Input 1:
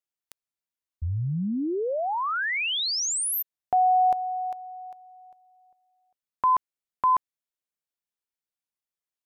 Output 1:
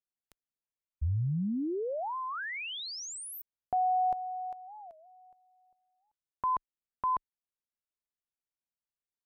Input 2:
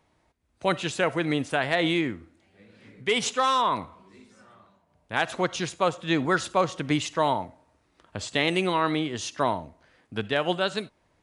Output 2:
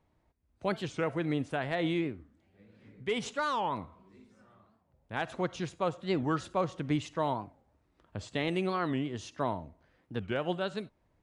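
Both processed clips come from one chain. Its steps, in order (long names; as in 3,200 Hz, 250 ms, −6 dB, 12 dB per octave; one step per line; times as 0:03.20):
spectral tilt −2 dB per octave
wow of a warped record 45 rpm, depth 250 cents
level −8.5 dB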